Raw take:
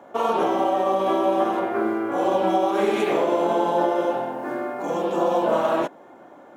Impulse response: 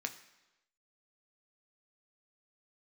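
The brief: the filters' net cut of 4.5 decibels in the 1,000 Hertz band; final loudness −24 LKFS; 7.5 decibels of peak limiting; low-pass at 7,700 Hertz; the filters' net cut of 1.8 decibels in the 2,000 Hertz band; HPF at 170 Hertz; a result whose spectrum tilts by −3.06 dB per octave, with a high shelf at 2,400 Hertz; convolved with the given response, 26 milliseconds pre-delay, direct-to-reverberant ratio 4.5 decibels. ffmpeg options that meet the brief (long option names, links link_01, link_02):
-filter_complex "[0:a]highpass=170,lowpass=7700,equalizer=frequency=1000:width_type=o:gain=-7,equalizer=frequency=2000:width_type=o:gain=-4,highshelf=frequency=2400:gain=8.5,alimiter=limit=-18.5dB:level=0:latency=1,asplit=2[link_01][link_02];[1:a]atrim=start_sample=2205,adelay=26[link_03];[link_02][link_03]afir=irnorm=-1:irlink=0,volume=-5.5dB[link_04];[link_01][link_04]amix=inputs=2:normalize=0,volume=3dB"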